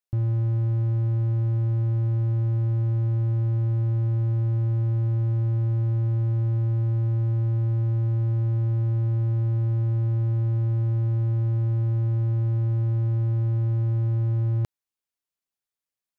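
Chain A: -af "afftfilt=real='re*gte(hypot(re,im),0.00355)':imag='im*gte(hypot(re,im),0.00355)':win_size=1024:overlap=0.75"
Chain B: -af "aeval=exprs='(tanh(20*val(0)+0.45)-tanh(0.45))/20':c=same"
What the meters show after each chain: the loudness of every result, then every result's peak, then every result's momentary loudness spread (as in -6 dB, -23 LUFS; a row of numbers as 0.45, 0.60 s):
-24.5, -30.0 LUFS; -18.0, -23.0 dBFS; 0, 0 LU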